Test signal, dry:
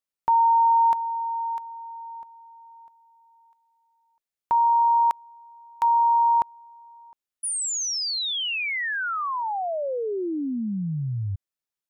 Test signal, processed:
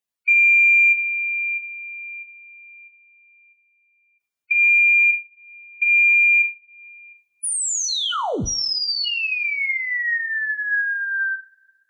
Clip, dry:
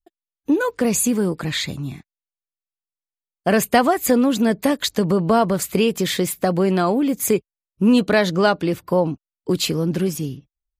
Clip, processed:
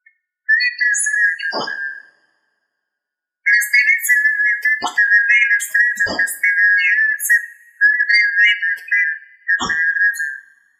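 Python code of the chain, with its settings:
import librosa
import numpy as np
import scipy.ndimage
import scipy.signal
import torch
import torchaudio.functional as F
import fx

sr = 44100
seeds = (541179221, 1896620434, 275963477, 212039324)

p1 = fx.band_shuffle(x, sr, order='3142')
p2 = fx.spec_gate(p1, sr, threshold_db=-10, keep='strong')
p3 = fx.rev_double_slope(p2, sr, seeds[0], early_s=0.34, late_s=2.0, knee_db=-27, drr_db=6.5)
p4 = 10.0 ** (-9.5 / 20.0) * np.tanh(p3 / 10.0 ** (-9.5 / 20.0))
y = p3 + (p4 * 10.0 ** (-6.0 / 20.0))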